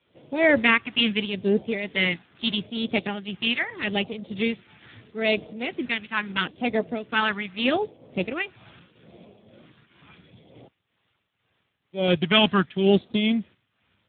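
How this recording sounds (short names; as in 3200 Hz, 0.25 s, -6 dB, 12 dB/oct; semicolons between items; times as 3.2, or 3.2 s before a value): phasing stages 2, 0.78 Hz, lowest notch 520–1400 Hz; a quantiser's noise floor 12-bit, dither triangular; tremolo triangle 2.1 Hz, depth 70%; Speex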